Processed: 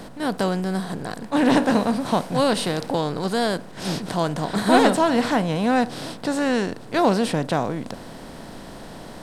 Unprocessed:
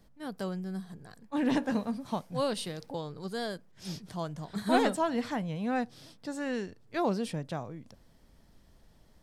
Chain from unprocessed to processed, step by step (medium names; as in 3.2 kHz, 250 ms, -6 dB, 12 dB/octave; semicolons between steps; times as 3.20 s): spectral levelling over time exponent 0.6; trim +8 dB